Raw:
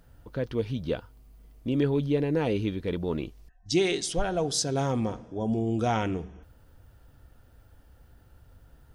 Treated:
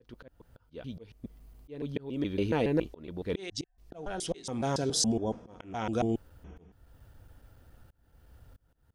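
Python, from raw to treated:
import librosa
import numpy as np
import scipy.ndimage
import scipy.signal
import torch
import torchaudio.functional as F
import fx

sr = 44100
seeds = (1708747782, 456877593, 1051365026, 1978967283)

y = fx.block_reorder(x, sr, ms=140.0, group=4)
y = fx.dynamic_eq(y, sr, hz=120.0, q=2.0, threshold_db=-43.0, ratio=4.0, max_db=-4)
y = fx.auto_swell(y, sr, attack_ms=444.0)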